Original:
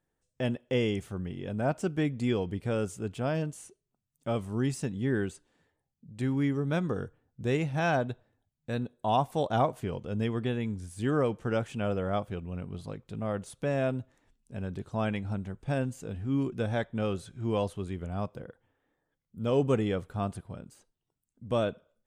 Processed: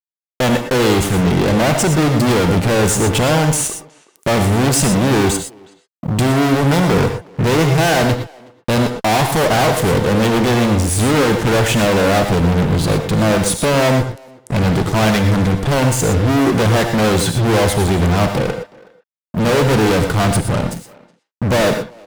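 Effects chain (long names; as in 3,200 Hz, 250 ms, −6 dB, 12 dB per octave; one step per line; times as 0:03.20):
fuzz pedal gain 48 dB, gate −54 dBFS
far-end echo of a speakerphone 370 ms, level −19 dB
reverb whose tail is shaped and stops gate 140 ms rising, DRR 6 dB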